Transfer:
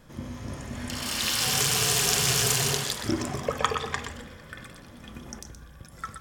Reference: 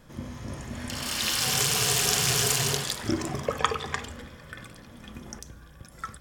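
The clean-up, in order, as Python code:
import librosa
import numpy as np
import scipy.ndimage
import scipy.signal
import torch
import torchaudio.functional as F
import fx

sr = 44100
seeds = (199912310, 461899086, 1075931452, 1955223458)

y = fx.fix_declip(x, sr, threshold_db=-7.0)
y = fx.fix_echo_inverse(y, sr, delay_ms=122, level_db=-9.0)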